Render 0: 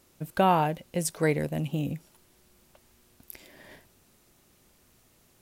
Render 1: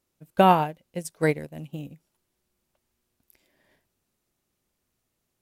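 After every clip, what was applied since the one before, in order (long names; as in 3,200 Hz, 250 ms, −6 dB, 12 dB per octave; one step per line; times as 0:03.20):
expander for the loud parts 2.5 to 1, over −34 dBFS
level +6.5 dB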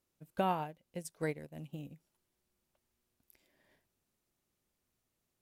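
downward compressor 1.5 to 1, threshold −40 dBFS, peak gain reduction 10 dB
level −5.5 dB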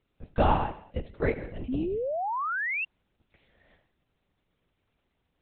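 reverb whose tail is shaped and stops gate 280 ms falling, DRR 10 dB
linear-prediction vocoder at 8 kHz whisper
sound drawn into the spectrogram rise, 0:01.68–0:02.85, 240–2,800 Hz −39 dBFS
level +9 dB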